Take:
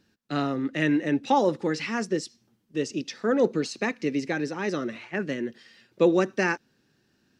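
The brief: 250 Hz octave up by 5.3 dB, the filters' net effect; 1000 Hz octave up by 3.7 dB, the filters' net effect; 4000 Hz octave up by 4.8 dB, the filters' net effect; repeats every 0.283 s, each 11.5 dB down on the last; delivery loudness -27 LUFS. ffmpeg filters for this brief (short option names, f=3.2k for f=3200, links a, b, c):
-af "equalizer=f=250:t=o:g=6.5,equalizer=f=1k:t=o:g=4,equalizer=f=4k:t=o:g=6,aecho=1:1:283|566|849:0.266|0.0718|0.0194,volume=-4dB"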